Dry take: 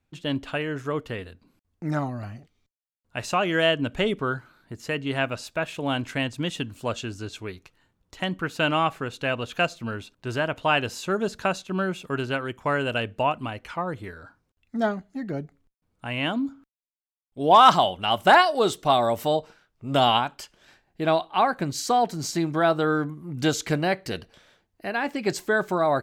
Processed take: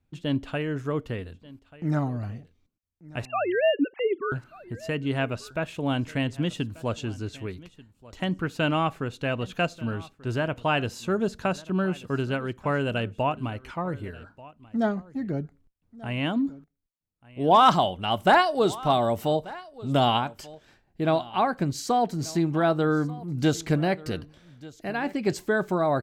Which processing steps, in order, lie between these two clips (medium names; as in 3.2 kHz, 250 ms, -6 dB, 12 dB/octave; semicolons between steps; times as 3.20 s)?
3.25–4.32 s: formants replaced by sine waves; bass shelf 410 Hz +8.5 dB; on a send: delay 1187 ms -20.5 dB; on the sum: trim -4.5 dB